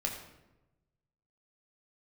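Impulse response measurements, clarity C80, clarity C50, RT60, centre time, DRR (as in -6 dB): 8.0 dB, 6.0 dB, 1.0 s, 29 ms, 0.0 dB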